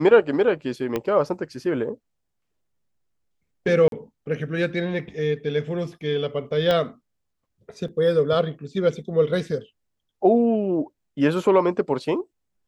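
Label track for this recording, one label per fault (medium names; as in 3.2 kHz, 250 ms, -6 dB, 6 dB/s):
0.960000	0.960000	pop -12 dBFS
3.880000	3.920000	dropout 42 ms
6.710000	6.710000	pop -11 dBFS
7.880000	7.880000	dropout 2.8 ms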